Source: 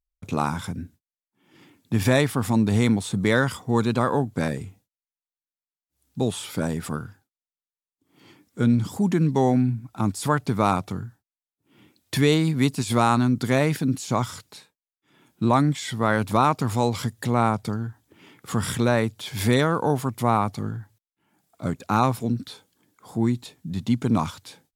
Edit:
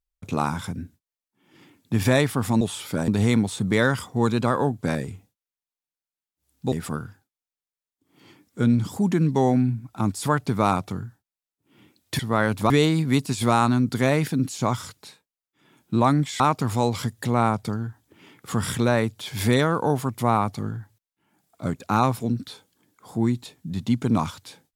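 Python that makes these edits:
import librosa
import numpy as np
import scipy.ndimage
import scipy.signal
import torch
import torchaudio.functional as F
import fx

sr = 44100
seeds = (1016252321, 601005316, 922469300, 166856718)

y = fx.edit(x, sr, fx.move(start_s=6.25, length_s=0.47, to_s=2.61),
    fx.move(start_s=15.89, length_s=0.51, to_s=12.19), tone=tone)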